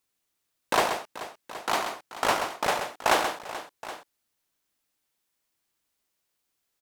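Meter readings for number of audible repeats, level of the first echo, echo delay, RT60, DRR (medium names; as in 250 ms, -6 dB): 3, -7.5 dB, 130 ms, no reverb, no reverb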